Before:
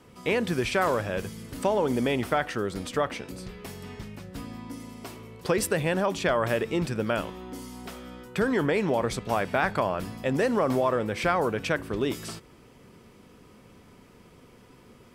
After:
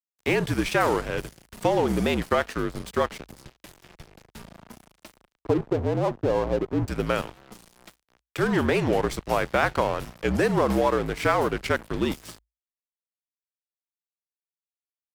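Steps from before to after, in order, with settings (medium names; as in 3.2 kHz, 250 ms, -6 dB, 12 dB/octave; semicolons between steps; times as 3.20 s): 5.41–6.88 s: steep low-pass 1 kHz 36 dB/octave; 7.87–8.43 s: peaking EQ 96 Hz -10 dB 2 oct; crossover distortion -36.5 dBFS; frequency shift -56 Hz; warped record 45 rpm, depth 160 cents; trim +4 dB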